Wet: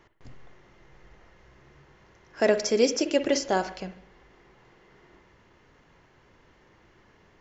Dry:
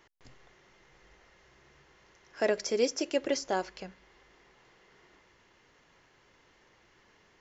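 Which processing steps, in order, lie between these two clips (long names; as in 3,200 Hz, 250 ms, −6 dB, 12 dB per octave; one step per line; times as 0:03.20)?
bass and treble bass +5 dB, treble +1 dB
on a send at −10 dB: convolution reverb, pre-delay 49 ms
on the sum: one half of a high-frequency compander decoder only
level +5 dB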